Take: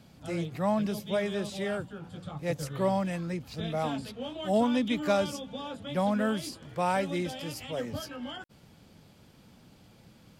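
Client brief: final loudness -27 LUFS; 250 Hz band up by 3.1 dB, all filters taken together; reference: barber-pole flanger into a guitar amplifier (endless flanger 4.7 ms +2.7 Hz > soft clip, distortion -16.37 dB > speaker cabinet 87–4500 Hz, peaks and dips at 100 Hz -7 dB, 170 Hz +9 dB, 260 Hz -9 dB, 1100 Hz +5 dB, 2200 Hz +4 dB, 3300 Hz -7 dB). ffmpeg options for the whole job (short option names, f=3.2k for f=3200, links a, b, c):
-filter_complex "[0:a]equalizer=f=250:t=o:g=3.5,asplit=2[a][b];[b]adelay=4.7,afreqshift=2.7[c];[a][c]amix=inputs=2:normalize=1,asoftclip=threshold=-22.5dB,highpass=87,equalizer=f=100:t=q:w=4:g=-7,equalizer=f=170:t=q:w=4:g=9,equalizer=f=260:t=q:w=4:g=-9,equalizer=f=1.1k:t=q:w=4:g=5,equalizer=f=2.2k:t=q:w=4:g=4,equalizer=f=3.3k:t=q:w=4:g=-7,lowpass=f=4.5k:w=0.5412,lowpass=f=4.5k:w=1.3066,volume=6.5dB"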